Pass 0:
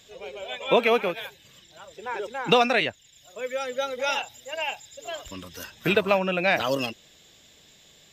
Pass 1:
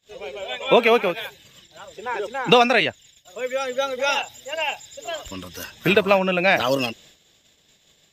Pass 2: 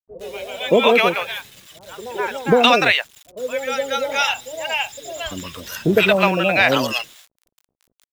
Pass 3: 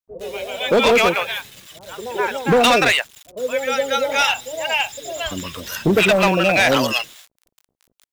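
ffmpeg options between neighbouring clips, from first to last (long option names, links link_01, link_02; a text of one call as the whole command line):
ffmpeg -i in.wav -af "agate=range=-26dB:threshold=-53dB:ratio=16:detection=peak,volume=4.5dB" out.wav
ffmpeg -i in.wav -filter_complex "[0:a]acrusher=bits=7:mix=0:aa=0.000001,acrossover=split=670[link_01][link_02];[link_02]adelay=120[link_03];[link_01][link_03]amix=inputs=2:normalize=0,volume=4dB" out.wav
ffmpeg -i in.wav -af "asoftclip=type=hard:threshold=-13dB,volume=2.5dB" out.wav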